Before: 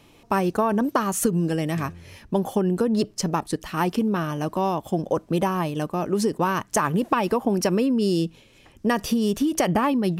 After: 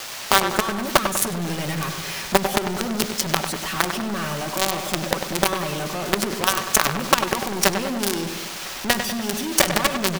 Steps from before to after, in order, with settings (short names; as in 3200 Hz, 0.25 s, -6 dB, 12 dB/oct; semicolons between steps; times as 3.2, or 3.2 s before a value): gate with hold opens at -42 dBFS; low shelf 420 Hz -11.5 dB; comb 5.3 ms, depth 80%; dynamic EQ 930 Hz, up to -5 dB, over -37 dBFS, Q 5.2; in parallel at +2 dB: compressor 5:1, threshold -33 dBFS, peak gain reduction 14 dB; on the sum: band noise 500–6500 Hz -41 dBFS; companded quantiser 2-bit; on a send: darkening echo 98 ms, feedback 59%, low-pass 2800 Hz, level -7 dB; on the sum: gain -2 dB